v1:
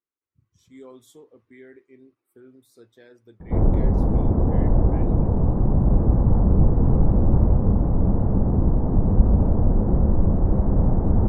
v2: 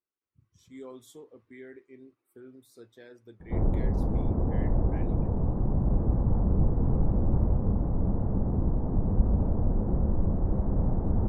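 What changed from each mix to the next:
background −7.5 dB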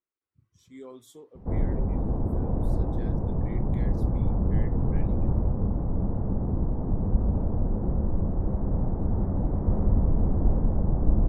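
background: entry −2.05 s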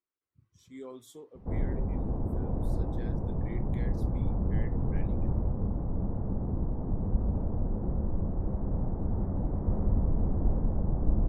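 background −4.5 dB

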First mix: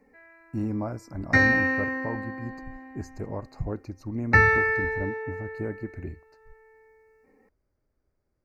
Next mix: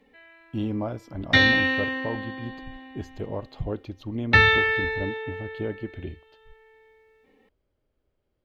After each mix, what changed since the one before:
speech: add octave-band graphic EQ 500/4,000/8,000 Hz +4/−4/−7 dB
master: remove Butterworth band-reject 3,300 Hz, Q 1.1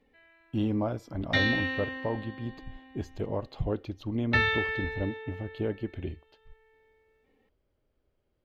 background −8.5 dB

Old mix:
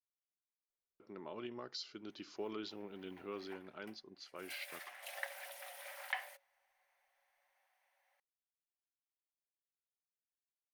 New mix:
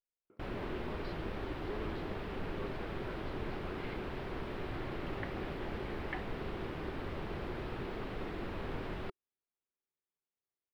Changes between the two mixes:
speech: entry −0.70 s
first sound: unmuted
master: add high-frequency loss of the air 420 metres

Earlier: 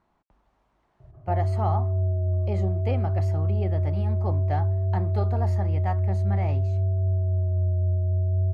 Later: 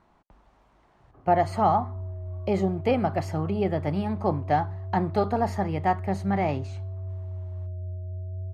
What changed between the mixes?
speech +7.5 dB
background −11.0 dB

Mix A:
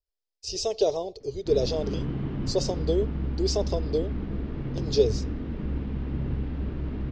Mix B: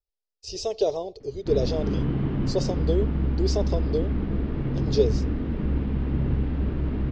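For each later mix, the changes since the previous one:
background +5.0 dB
master: add high-shelf EQ 5,600 Hz −7.5 dB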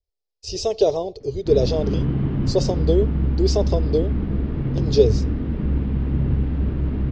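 speech +5.0 dB
master: add parametric band 100 Hz +5 dB 2.6 octaves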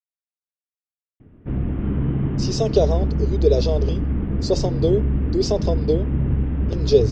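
speech: entry +1.95 s
background: add Savitzky-Golay smoothing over 25 samples

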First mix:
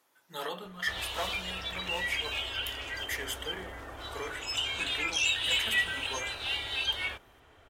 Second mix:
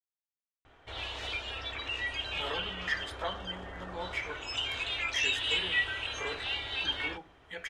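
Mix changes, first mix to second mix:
speech: entry +2.05 s
master: add high-frequency loss of the air 95 metres

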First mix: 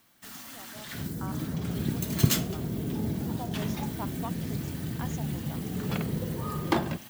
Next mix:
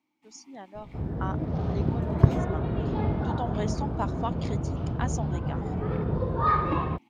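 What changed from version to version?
speech +7.5 dB
first sound: add formant filter u
second sound: remove resonant band-pass 210 Hz, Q 1.2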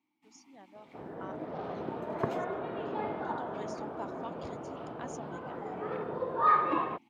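speech −11.0 dB
first sound −3.0 dB
second sound: add band-pass filter 440–3,200 Hz

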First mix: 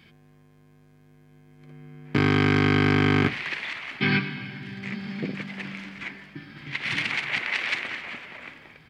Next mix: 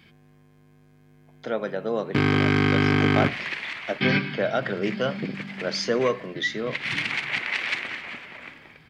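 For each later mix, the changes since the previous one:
speech: unmuted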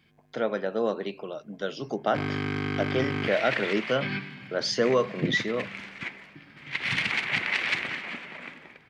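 speech: entry −1.10 s
first sound −9.5 dB
second sound: add low-shelf EQ 190 Hz +10 dB

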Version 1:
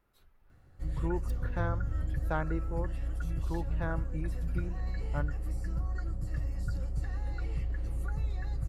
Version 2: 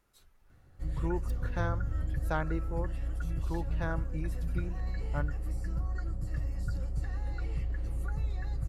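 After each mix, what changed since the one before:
speech: add parametric band 7,400 Hz +12.5 dB 1.6 octaves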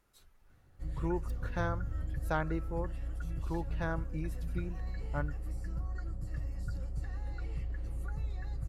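background −4.0 dB

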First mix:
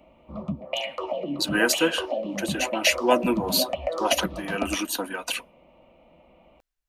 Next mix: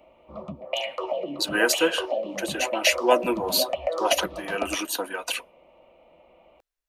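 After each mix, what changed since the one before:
master: add low shelf with overshoot 310 Hz −6.5 dB, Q 1.5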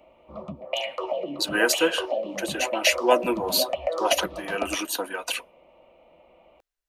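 nothing changed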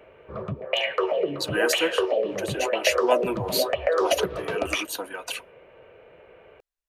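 speech −3.5 dB
background: remove phaser with its sweep stopped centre 430 Hz, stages 6

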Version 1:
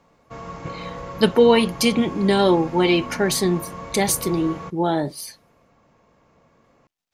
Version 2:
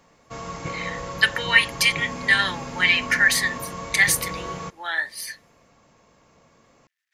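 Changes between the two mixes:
speech: add high-pass with resonance 1,800 Hz, resonance Q 7.2
background: remove low-pass filter 1,900 Hz 6 dB per octave

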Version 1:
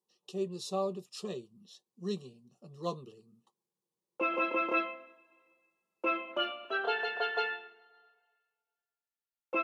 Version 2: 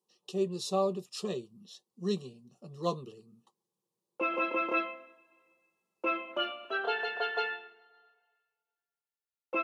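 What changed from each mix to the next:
speech +4.0 dB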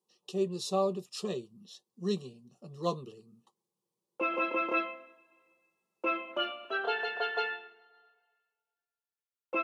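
nothing changed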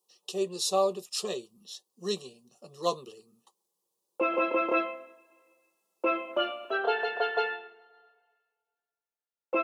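speech: add spectral tilt +3.5 dB per octave
master: add parametric band 560 Hz +7 dB 1.9 octaves

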